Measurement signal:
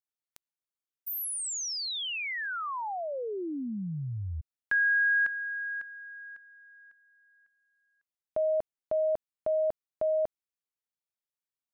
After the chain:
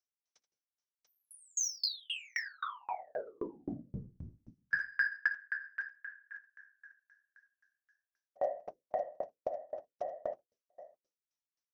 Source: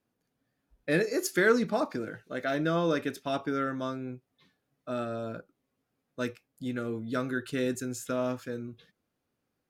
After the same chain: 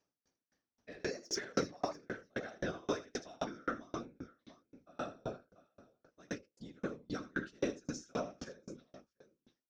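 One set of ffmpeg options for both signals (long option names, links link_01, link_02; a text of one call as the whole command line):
ffmpeg -i in.wav -filter_complex "[0:a]highpass=180,aemphasis=mode=reproduction:type=50fm,bandreject=frequency=60:width_type=h:width=6,bandreject=frequency=120:width_type=h:width=6,bandreject=frequency=180:width_type=h:width=6,bandreject=frequency=240:width_type=h:width=6,bandreject=frequency=300:width_type=h:width=6,bandreject=frequency=360:width_type=h:width=6,bandreject=frequency=420:width_type=h:width=6,bandreject=frequency=480:width_type=h:width=6,bandreject=frequency=540:width_type=h:width=6,asplit=2[link_01][link_02];[link_02]acompressor=threshold=-40dB:ratio=6:attack=0.29:release=454:detection=peak,volume=-1dB[link_03];[link_01][link_03]amix=inputs=2:normalize=0,lowpass=frequency=5800:width_type=q:width=9.7,flanger=delay=7.4:depth=1.6:regen=-53:speed=1.2:shape=sinusoidal,asoftclip=type=tanh:threshold=-21.5dB,afftfilt=real='hypot(re,im)*cos(2*PI*random(0))':imag='hypot(re,im)*sin(2*PI*random(1))':win_size=512:overlap=0.75,aecho=1:1:63|80|688:0.112|0.668|0.126,aeval=exprs='val(0)*pow(10,-36*if(lt(mod(3.8*n/s,1),2*abs(3.8)/1000),1-mod(3.8*n/s,1)/(2*abs(3.8)/1000),(mod(3.8*n/s,1)-2*abs(3.8)/1000)/(1-2*abs(3.8)/1000))/20)':channel_layout=same,volume=7.5dB" out.wav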